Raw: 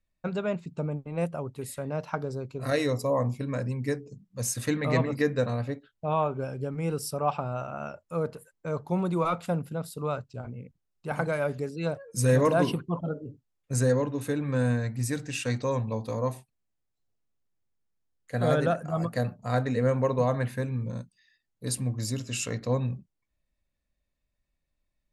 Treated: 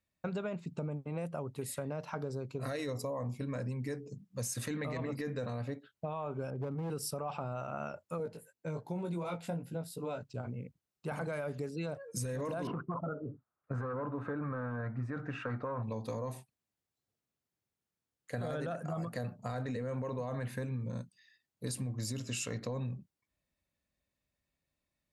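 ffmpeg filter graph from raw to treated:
ffmpeg -i in.wav -filter_complex "[0:a]asettb=1/sr,asplit=3[link_01][link_02][link_03];[link_01]atrim=end=6.504[link_04];[link_02]atrim=start=6.5:end=6.9,asetpts=PTS-STARTPTS,afade=type=in:duration=0.004:curve=qsin,afade=type=out:start_time=0.396:duration=0.004:curve=qsin,lowpass=1100,asoftclip=type=hard:threshold=-29dB[link_05];[link_03]atrim=start=6.896[link_06];[link_04][link_05]acrossfade=duration=0.004:curve1=hsin:curve2=qsin[link_07];[link_07][link_06]acrossfade=duration=0.004:curve1=qsin:curve2=hsin,asettb=1/sr,asplit=3[link_08][link_09][link_10];[link_08]atrim=end=8.184[link_11];[link_09]atrim=start=8.18:end=10.23,asetpts=PTS-STARTPTS,afade=type=in:duration=0.004:curve=qsin,afade=type=out:start_time=2.046:duration=0.004:curve=qsin,equalizer=frequency=1200:width_type=o:width=0.23:gain=-14.5,flanger=delay=16.5:depth=2.1:speed=2.7[link_12];[link_10]atrim=start=10.226[link_13];[link_11][link_12]acrossfade=duration=0.004:curve1=hsin:curve2=qsin[link_14];[link_14][link_13]acrossfade=duration=0.004:curve1=qsin:curve2=hsin,asettb=1/sr,asplit=3[link_15][link_16][link_17];[link_15]atrim=end=12.674[link_18];[link_16]atrim=start=12.67:end=15.83,asetpts=PTS-STARTPTS,afade=type=in:duration=0.004:curve=qsin,afade=type=out:start_time=3.156:duration=0.004:curve=qsin,equalizer=frequency=660:width_type=o:width=0.25:gain=5.5,volume=21dB,asoftclip=hard,volume=-21dB,lowpass=frequency=1300:width_type=q:width=5[link_19];[link_17]atrim=start=15.826[link_20];[link_18][link_19]acrossfade=duration=0.004:curve1=hsin:curve2=qsin[link_21];[link_21][link_20]acrossfade=duration=0.004:curve1=qsin:curve2=hsin,highpass=83,alimiter=limit=-23dB:level=0:latency=1:release=14,acompressor=threshold=-34dB:ratio=6" out.wav

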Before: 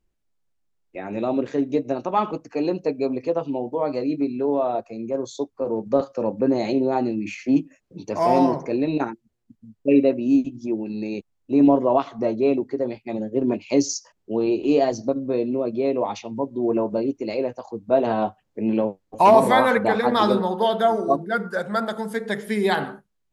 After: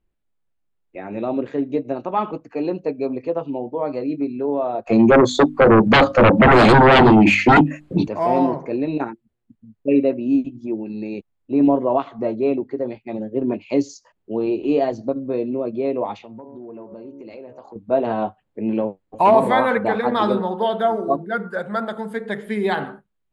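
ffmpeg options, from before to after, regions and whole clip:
ffmpeg -i in.wav -filter_complex "[0:a]asettb=1/sr,asplit=3[link_01][link_02][link_03];[link_01]atrim=end=4.874[link_04];[link_02]atrim=start=4.87:end=8.08,asetpts=PTS-STARTPTS,afade=type=in:duration=0.004:curve=qsin,afade=type=out:start_time=3.206:duration=0.004:curve=qsin,equalizer=frequency=470:width=5.7:gain=-4.5,bandreject=frequency=50:width_type=h:width=6,bandreject=frequency=100:width_type=h:width=6,bandreject=frequency=150:width_type=h:width=6,bandreject=frequency=200:width_type=h:width=6,bandreject=frequency=250:width_type=h:width=6,bandreject=frequency=300:width_type=h:width=6,aeval=exprs='0.447*sin(PI/2*7.08*val(0)/0.447)':channel_layout=same[link_05];[link_03]atrim=start=8.076[link_06];[link_04][link_05]acrossfade=duration=0.004:curve1=hsin:curve2=qsin[link_07];[link_07][link_06]acrossfade=duration=0.004:curve1=qsin:curve2=hsin,asettb=1/sr,asplit=3[link_08][link_09][link_10];[link_08]atrim=end=16.144[link_11];[link_09]atrim=start=16.14:end=17.76,asetpts=PTS-STARTPTS,afade=type=in:duration=0.004:curve=qsin,afade=type=out:start_time=1.616:duration=0.004:curve=qsin,bandreject=frequency=69.74:width_type=h:width=4,bandreject=frequency=139.48:width_type=h:width=4,bandreject=frequency=209.22:width_type=h:width=4,bandreject=frequency=278.96:width_type=h:width=4,bandreject=frequency=348.7:width_type=h:width=4,bandreject=frequency=418.44:width_type=h:width=4,bandreject=frequency=488.18:width_type=h:width=4,bandreject=frequency=557.92:width_type=h:width=4,bandreject=frequency=627.66:width_type=h:width=4,bandreject=frequency=697.4:width_type=h:width=4,bandreject=frequency=767.14:width_type=h:width=4,bandreject=frequency=836.88:width_type=h:width=4,bandreject=frequency=906.62:width_type=h:width=4,bandreject=frequency=976.36:width_type=h:width=4,bandreject=frequency=1046.1:width_type=h:width=4,bandreject=frequency=1115.84:width_type=h:width=4,bandreject=frequency=1185.58:width_type=h:width=4,bandreject=frequency=1255.32:width_type=h:width=4,bandreject=frequency=1325.06:width_type=h:width=4,bandreject=frequency=1394.8:width_type=h:width=4,bandreject=frequency=1464.54:width_type=h:width=4,acompressor=threshold=-35dB:ratio=5:attack=3.2:release=140:knee=1:detection=peak[link_12];[link_10]atrim=start=17.756[link_13];[link_11][link_12]acrossfade=duration=0.004:curve1=hsin:curve2=qsin[link_14];[link_14][link_13]acrossfade=duration=0.004:curve1=qsin:curve2=hsin,lowpass=7700,equalizer=frequency=5700:width=2:gain=-15" out.wav

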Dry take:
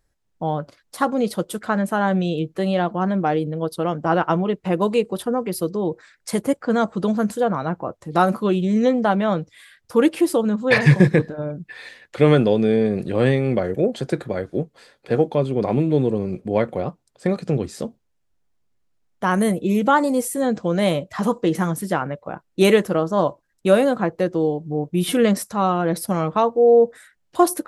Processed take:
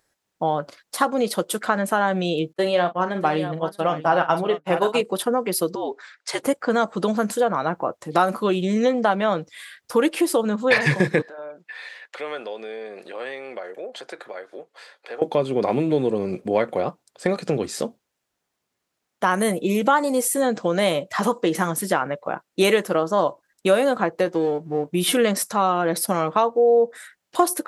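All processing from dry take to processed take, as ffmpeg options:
ffmpeg -i in.wav -filter_complex "[0:a]asettb=1/sr,asplit=3[link_01][link_02][link_03];[link_01]atrim=end=2.534[link_04];[link_02]atrim=start=2.53:end=5.01,asetpts=PTS-STARTPTS,afade=type=in:duration=0.004:curve=qsin,afade=type=out:start_time=2.476:duration=0.004:curve=qsin,aecho=1:1:7.4:0.46,atrim=end_sample=109368,aecho=1:1:45|645:0.299|0.266,atrim=end_sample=109368,agate=range=-33dB:threshold=-21dB:ratio=3:release=100:detection=peak[link_05];[link_03]atrim=start=5.006[link_06];[link_04][link_05]acrossfade=duration=0.004:curve1=hsin:curve2=qsin[link_07];[link_07][link_06]acrossfade=duration=0.004:curve1=qsin:curve2=hsin,asettb=1/sr,asplit=3[link_08][link_09][link_10];[link_08]atrim=end=5.754[link_11];[link_09]atrim=start=5.75:end=6.43,asetpts=PTS-STARTPTS,afade=type=in:duration=0.004:curve=qsin,afade=type=out:start_time=0.676:duration=0.004:curve=qsin,afreqshift=-66,highpass=520,lowpass=5600[link_12];[link_10]atrim=start=6.426[link_13];[link_11][link_12]acrossfade=duration=0.004:curve1=hsin:curve2=qsin[link_14];[link_14][link_13]acrossfade=duration=0.004:curve1=qsin:curve2=hsin,asettb=1/sr,asplit=3[link_15][link_16][link_17];[link_15]atrim=end=11.224[link_18];[link_16]atrim=start=11.22:end=15.22,asetpts=PTS-STARTPTS,afade=type=in:duration=0.004:curve=qsin,afade=type=out:start_time=3.996:duration=0.004:curve=qsin,highpass=600,aemphasis=mode=reproduction:type=cd,acompressor=threshold=-43dB:ratio=2:attack=3.2:release=140:knee=1:detection=peak[link_19];[link_17]atrim=start=15.216[link_20];[link_18][link_19]acrossfade=duration=0.004:curve1=hsin:curve2=qsin[link_21];[link_21][link_20]acrossfade=duration=0.004:curve1=qsin:curve2=hsin,asettb=1/sr,asplit=3[link_22][link_23][link_24];[link_22]atrim=end=24.254[link_25];[link_23]atrim=start=24.25:end=24.9,asetpts=PTS-STARTPTS,afade=type=in:duration=0.004:curve=qsin,afade=type=out:start_time=0.646:duration=0.004:curve=qsin,aeval=exprs='if(lt(val(0),0),0.708*val(0),val(0))':channel_layout=same,asplit=2[link_26][link_27];[link_27]adelay=18,volume=-12.5dB[link_28];[link_26][link_28]amix=inputs=2:normalize=0,atrim=end_sample=28665[link_29];[link_24]atrim=start=24.896[link_30];[link_25][link_29]acrossfade=duration=0.004:curve1=hsin:curve2=qsin[link_31];[link_31][link_30]acrossfade=duration=0.004:curve1=qsin:curve2=hsin,highpass=frequency=500:poles=1,acompressor=threshold=-26dB:ratio=2,volume=7dB" out.wav

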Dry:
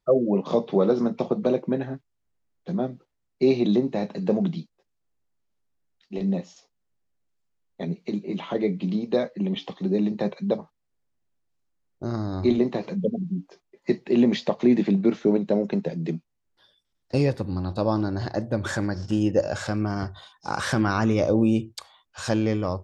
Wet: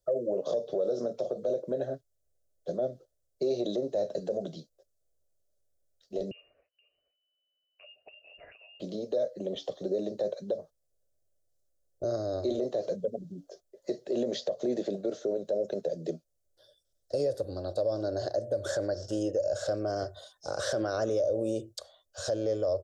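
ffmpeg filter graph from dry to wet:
ffmpeg -i in.wav -filter_complex "[0:a]asettb=1/sr,asplit=3[link_01][link_02][link_03];[link_01]atrim=end=6.314[link_04];[link_02]atrim=start=6.31:end=8.8,asetpts=PTS-STARTPTS,afade=type=in:duration=0.004:curve=qsin,afade=type=out:start_time=2.486:duration=0.004:curve=qsin,acompressor=threshold=-38dB:ratio=10:attack=3.2:release=140:knee=1:detection=peak,aecho=1:1:475:0.178,atrim=end_sample=109809,lowpass=frequency=2600:width_type=q:width=0.5098,lowpass=frequency=2600:width_type=q:width=0.6013,lowpass=frequency=2600:width_type=q:width=0.9,lowpass=frequency=2600:width_type=q:width=2.563,afreqshift=-3000[link_05];[link_03]atrim=start=8.796[link_06];[link_04][link_05]acrossfade=duration=0.004:curve1=hsin:curve2=qsin[link_07];[link_07][link_06]acrossfade=duration=0.004:curve1=qsin:curve2=hsin,firequalizer=gain_entry='entry(110,0);entry(190,-13);entry(590,12);entry(880,-16);entry(1500,-7);entry(2300,-20);entry(3300,-5);entry(6000,4);entry(9400,6)':delay=0.05:min_phase=1,acrossover=split=250|5700[link_08][link_09][link_10];[link_08]acompressor=threshold=-45dB:ratio=4[link_11];[link_09]acompressor=threshold=-22dB:ratio=4[link_12];[link_10]acompressor=threshold=-54dB:ratio=4[link_13];[link_11][link_12][link_13]amix=inputs=3:normalize=0,alimiter=limit=-21dB:level=0:latency=1:release=39" out.wav

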